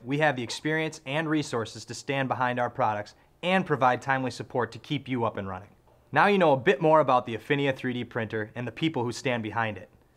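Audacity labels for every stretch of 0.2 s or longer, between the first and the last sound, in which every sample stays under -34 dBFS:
3.020000	3.430000	silence
5.580000	6.130000	silence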